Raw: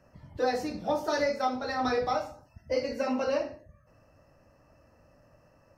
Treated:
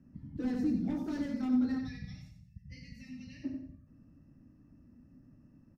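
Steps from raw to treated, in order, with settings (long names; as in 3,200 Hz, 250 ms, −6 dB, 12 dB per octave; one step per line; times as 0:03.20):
gain on a spectral selection 0:01.78–0:03.44, 210–1,700 Hz −27 dB
on a send: repeating echo 92 ms, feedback 31%, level −6.5 dB
on the sum: hard clipping −26.5 dBFS, distortion −10 dB
drawn EQ curve 110 Hz 0 dB, 260 Hz +11 dB, 550 Hz −20 dB, 1,900 Hz −14 dB, 2,900 Hz −16 dB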